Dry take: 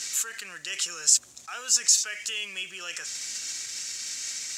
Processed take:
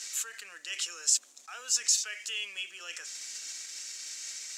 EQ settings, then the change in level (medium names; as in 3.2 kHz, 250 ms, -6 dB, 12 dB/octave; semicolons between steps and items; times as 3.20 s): high-pass 280 Hz 24 dB/octave; band-stop 370 Hz, Q 12; dynamic bell 3 kHz, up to +4 dB, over -35 dBFS, Q 1; -6.5 dB